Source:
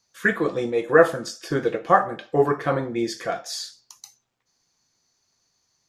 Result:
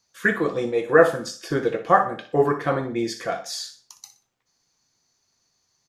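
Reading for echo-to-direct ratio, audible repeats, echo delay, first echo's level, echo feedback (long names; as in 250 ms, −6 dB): −12.0 dB, 3, 61 ms, −12.5 dB, 31%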